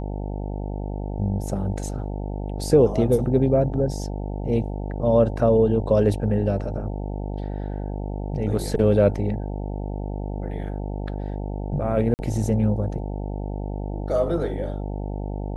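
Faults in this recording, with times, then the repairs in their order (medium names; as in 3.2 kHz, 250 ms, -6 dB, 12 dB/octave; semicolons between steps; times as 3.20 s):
buzz 50 Hz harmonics 18 -29 dBFS
12.14–12.19 s: dropout 49 ms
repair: de-hum 50 Hz, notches 18; interpolate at 12.14 s, 49 ms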